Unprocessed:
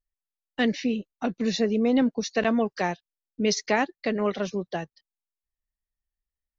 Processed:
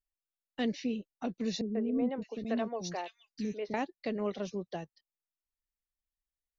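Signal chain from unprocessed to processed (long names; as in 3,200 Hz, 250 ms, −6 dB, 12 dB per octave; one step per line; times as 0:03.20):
dynamic equaliser 1,600 Hz, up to −7 dB, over −42 dBFS, Q 1.2
0:01.61–0:03.74: three-band delay without the direct sound lows, mids, highs 140/610 ms, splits 370/2,500 Hz
level −7.5 dB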